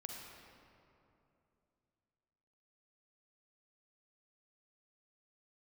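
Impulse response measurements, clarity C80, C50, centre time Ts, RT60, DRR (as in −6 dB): 2.0 dB, 0.5 dB, 106 ms, 2.8 s, 0.0 dB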